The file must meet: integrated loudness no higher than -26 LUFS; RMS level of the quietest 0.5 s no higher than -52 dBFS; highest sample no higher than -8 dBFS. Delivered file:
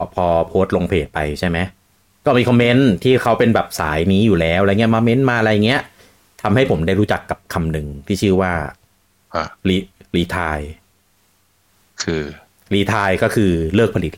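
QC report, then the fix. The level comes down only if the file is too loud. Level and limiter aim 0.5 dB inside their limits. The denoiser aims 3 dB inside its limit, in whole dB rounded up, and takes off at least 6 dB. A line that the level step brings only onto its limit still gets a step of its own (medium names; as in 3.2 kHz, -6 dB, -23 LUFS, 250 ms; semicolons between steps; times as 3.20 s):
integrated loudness -17.0 LUFS: fail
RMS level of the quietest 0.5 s -59 dBFS: pass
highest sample -3.5 dBFS: fail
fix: trim -9.5 dB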